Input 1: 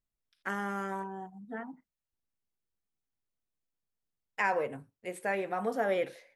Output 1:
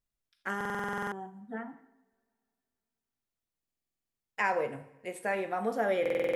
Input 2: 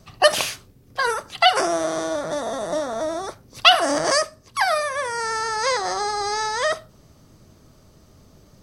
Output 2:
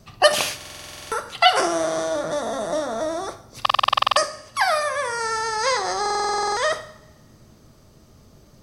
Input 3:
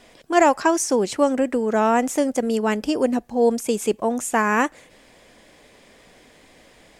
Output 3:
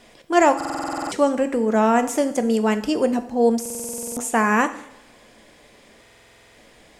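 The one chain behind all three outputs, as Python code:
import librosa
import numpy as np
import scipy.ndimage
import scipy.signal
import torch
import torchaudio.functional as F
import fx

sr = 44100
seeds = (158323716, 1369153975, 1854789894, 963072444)

y = fx.rev_double_slope(x, sr, seeds[0], early_s=0.69, late_s=2.6, knee_db=-25, drr_db=9.0)
y = fx.buffer_glitch(y, sr, at_s=(0.56, 3.61, 6.01), block=2048, repeats=11)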